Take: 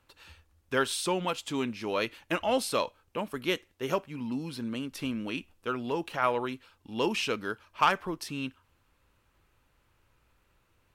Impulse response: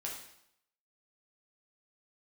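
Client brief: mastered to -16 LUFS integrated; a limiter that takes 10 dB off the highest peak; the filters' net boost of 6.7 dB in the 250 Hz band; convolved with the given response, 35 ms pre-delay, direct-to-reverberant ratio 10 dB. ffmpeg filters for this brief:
-filter_complex "[0:a]equalizer=f=250:t=o:g=8,alimiter=limit=0.1:level=0:latency=1,asplit=2[s0][s1];[1:a]atrim=start_sample=2205,adelay=35[s2];[s1][s2]afir=irnorm=-1:irlink=0,volume=0.316[s3];[s0][s3]amix=inputs=2:normalize=0,volume=5.62"

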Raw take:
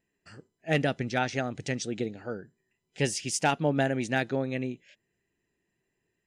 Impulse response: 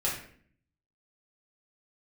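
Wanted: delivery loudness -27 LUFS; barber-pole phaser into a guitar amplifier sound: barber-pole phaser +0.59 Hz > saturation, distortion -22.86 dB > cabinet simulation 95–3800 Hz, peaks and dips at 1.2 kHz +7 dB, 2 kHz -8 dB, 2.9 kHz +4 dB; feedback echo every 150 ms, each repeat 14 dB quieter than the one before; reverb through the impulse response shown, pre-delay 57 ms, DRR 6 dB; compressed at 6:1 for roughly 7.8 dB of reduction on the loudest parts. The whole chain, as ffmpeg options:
-filter_complex "[0:a]acompressor=threshold=0.0355:ratio=6,aecho=1:1:150|300:0.2|0.0399,asplit=2[s0][s1];[1:a]atrim=start_sample=2205,adelay=57[s2];[s1][s2]afir=irnorm=-1:irlink=0,volume=0.211[s3];[s0][s3]amix=inputs=2:normalize=0,asplit=2[s4][s5];[s5]afreqshift=0.59[s6];[s4][s6]amix=inputs=2:normalize=1,asoftclip=threshold=0.0631,highpass=95,equalizer=f=1200:t=q:w=4:g=7,equalizer=f=2000:t=q:w=4:g=-8,equalizer=f=2900:t=q:w=4:g=4,lowpass=f=3800:w=0.5412,lowpass=f=3800:w=1.3066,volume=3.76"

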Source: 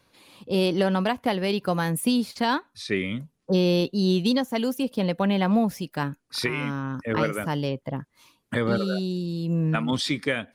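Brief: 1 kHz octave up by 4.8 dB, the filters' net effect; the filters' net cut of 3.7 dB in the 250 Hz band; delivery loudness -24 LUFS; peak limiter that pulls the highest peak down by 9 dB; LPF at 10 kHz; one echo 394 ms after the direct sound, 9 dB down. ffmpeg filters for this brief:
-af "lowpass=10000,equalizer=f=250:t=o:g=-5.5,equalizer=f=1000:t=o:g=6.5,alimiter=limit=0.126:level=0:latency=1,aecho=1:1:394:0.355,volume=1.68"

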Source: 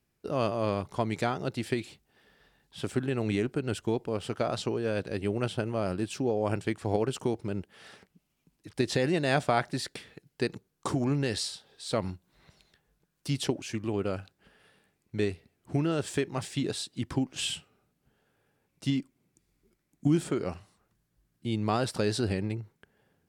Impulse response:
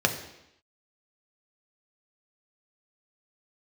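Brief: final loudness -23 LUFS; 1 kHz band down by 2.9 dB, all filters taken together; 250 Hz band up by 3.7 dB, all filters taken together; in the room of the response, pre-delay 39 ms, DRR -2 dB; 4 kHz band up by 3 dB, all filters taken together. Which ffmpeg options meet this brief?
-filter_complex "[0:a]equalizer=f=250:t=o:g=5,equalizer=f=1000:t=o:g=-5,equalizer=f=4000:t=o:g=4,asplit=2[s0][s1];[1:a]atrim=start_sample=2205,adelay=39[s2];[s1][s2]afir=irnorm=-1:irlink=0,volume=0.282[s3];[s0][s3]amix=inputs=2:normalize=0,volume=1.19"

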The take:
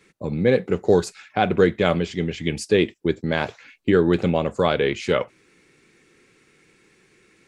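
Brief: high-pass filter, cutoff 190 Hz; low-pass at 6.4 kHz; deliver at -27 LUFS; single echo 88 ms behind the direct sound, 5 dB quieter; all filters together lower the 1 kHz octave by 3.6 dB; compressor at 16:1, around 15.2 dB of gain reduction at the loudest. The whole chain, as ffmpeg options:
-af "highpass=190,lowpass=6400,equalizer=f=1000:t=o:g=-5.5,acompressor=threshold=0.0398:ratio=16,aecho=1:1:88:0.562,volume=2.11"

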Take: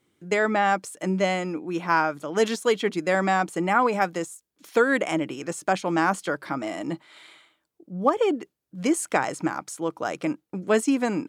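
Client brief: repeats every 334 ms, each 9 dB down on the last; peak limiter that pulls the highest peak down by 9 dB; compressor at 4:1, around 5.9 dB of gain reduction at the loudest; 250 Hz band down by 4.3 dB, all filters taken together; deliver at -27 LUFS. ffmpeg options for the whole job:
-af "equalizer=f=250:t=o:g=-6,acompressor=threshold=0.0708:ratio=4,alimiter=limit=0.1:level=0:latency=1,aecho=1:1:334|668|1002|1336:0.355|0.124|0.0435|0.0152,volume=1.68"

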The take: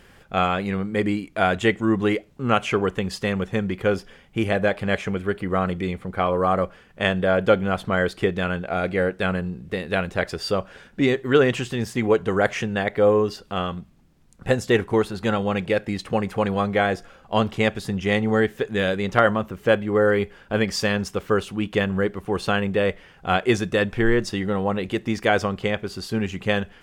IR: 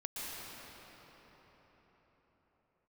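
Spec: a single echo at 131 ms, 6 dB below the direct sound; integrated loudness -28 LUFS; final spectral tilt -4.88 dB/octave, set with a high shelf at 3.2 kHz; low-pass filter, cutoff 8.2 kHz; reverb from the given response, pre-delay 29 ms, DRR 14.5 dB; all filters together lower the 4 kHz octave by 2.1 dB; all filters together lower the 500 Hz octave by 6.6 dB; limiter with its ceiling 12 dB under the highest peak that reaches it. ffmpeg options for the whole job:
-filter_complex "[0:a]lowpass=8200,equalizer=f=500:t=o:g=-8,highshelf=f=3200:g=4,equalizer=f=4000:t=o:g=-5.5,alimiter=limit=0.141:level=0:latency=1,aecho=1:1:131:0.501,asplit=2[s0][s1];[1:a]atrim=start_sample=2205,adelay=29[s2];[s1][s2]afir=irnorm=-1:irlink=0,volume=0.15[s3];[s0][s3]amix=inputs=2:normalize=0"

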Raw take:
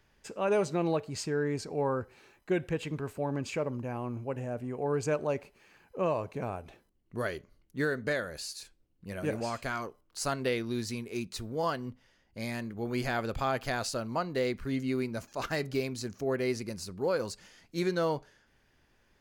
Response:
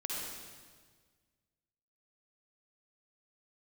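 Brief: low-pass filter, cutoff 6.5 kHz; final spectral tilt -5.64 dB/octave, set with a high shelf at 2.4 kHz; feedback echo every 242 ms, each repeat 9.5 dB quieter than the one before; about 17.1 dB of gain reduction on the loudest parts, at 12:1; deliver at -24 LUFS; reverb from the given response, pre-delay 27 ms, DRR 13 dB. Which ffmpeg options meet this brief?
-filter_complex "[0:a]lowpass=6500,highshelf=f=2400:g=-8.5,acompressor=threshold=0.00794:ratio=12,aecho=1:1:242|484|726|968:0.335|0.111|0.0365|0.012,asplit=2[s0][s1];[1:a]atrim=start_sample=2205,adelay=27[s2];[s1][s2]afir=irnorm=-1:irlink=0,volume=0.168[s3];[s0][s3]amix=inputs=2:normalize=0,volume=13.3"

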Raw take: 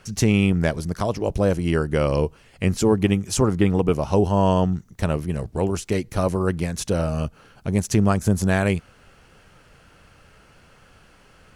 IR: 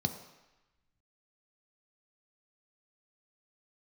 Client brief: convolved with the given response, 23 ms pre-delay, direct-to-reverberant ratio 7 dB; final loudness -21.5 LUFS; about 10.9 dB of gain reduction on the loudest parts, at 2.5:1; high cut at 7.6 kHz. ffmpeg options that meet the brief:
-filter_complex "[0:a]lowpass=7600,acompressor=threshold=0.0316:ratio=2.5,asplit=2[s0][s1];[1:a]atrim=start_sample=2205,adelay=23[s2];[s1][s2]afir=irnorm=-1:irlink=0,volume=0.282[s3];[s0][s3]amix=inputs=2:normalize=0,volume=1.88"

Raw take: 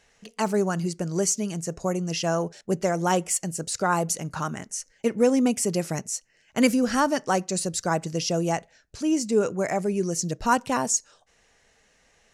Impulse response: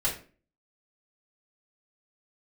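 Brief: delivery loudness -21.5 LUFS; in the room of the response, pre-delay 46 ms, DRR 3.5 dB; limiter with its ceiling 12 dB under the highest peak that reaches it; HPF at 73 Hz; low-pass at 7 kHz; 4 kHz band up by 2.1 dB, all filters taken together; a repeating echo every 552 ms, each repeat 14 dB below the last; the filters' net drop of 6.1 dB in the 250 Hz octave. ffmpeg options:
-filter_complex "[0:a]highpass=73,lowpass=7000,equalizer=f=250:t=o:g=-8,equalizer=f=4000:t=o:g=4,alimiter=limit=0.0944:level=0:latency=1,aecho=1:1:552|1104:0.2|0.0399,asplit=2[s0][s1];[1:a]atrim=start_sample=2205,adelay=46[s2];[s1][s2]afir=irnorm=-1:irlink=0,volume=0.266[s3];[s0][s3]amix=inputs=2:normalize=0,volume=2.51"

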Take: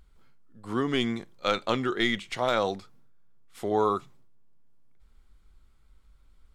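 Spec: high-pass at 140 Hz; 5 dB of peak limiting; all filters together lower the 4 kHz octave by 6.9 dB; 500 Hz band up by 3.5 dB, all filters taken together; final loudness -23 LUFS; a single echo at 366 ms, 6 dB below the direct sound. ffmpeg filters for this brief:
-af "highpass=140,equalizer=f=500:t=o:g=4.5,equalizer=f=4000:t=o:g=-9,alimiter=limit=0.168:level=0:latency=1,aecho=1:1:366:0.501,volume=1.88"

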